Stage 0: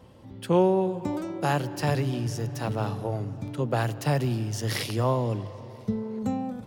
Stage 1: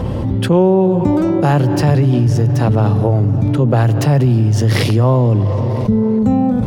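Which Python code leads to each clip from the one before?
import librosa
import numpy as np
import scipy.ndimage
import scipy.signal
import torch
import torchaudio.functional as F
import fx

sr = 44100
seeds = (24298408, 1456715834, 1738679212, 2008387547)

y = fx.tilt_eq(x, sr, slope=-2.5)
y = fx.env_flatten(y, sr, amount_pct=70)
y = F.gain(torch.from_numpy(y), 4.5).numpy()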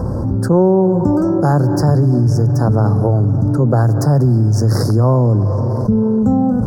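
y = scipy.signal.sosfilt(scipy.signal.ellip(3, 1.0, 70, [1500.0, 5000.0], 'bandstop', fs=sr, output='sos'), x)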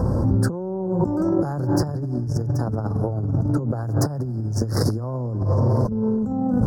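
y = fx.over_compress(x, sr, threshold_db=-16.0, ratio=-0.5)
y = F.gain(torch.from_numpy(y), -5.0).numpy()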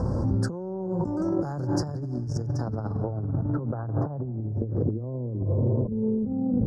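y = fx.filter_sweep_lowpass(x, sr, from_hz=6800.0, to_hz=430.0, start_s=2.42, end_s=4.76, q=1.3)
y = fx.end_taper(y, sr, db_per_s=160.0)
y = F.gain(torch.from_numpy(y), -5.5).numpy()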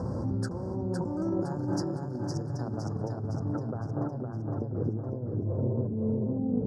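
y = scipy.signal.sosfilt(scipy.signal.butter(2, 93.0, 'highpass', fs=sr, output='sos'), x)
y = fx.echo_feedback(y, sr, ms=511, feedback_pct=47, wet_db=-4)
y = F.gain(torch.from_numpy(y), -4.5).numpy()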